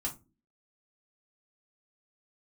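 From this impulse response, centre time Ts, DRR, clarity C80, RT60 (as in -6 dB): 13 ms, -2.5 dB, 23.0 dB, no single decay rate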